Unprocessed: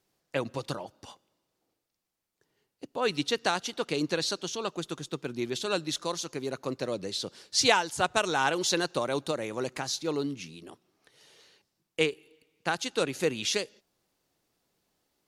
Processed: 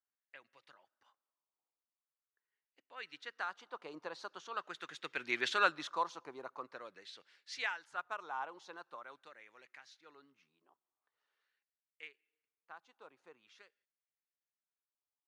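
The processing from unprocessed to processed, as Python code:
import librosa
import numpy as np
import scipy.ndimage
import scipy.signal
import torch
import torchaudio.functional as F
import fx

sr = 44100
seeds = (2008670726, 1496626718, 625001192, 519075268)

y = fx.doppler_pass(x, sr, speed_mps=6, closest_m=1.4, pass_at_s=5.41)
y = fx.filter_lfo_bandpass(y, sr, shape='sine', hz=0.44, low_hz=980.0, high_hz=2000.0, q=2.5)
y = F.gain(torch.from_numpy(y), 12.0).numpy()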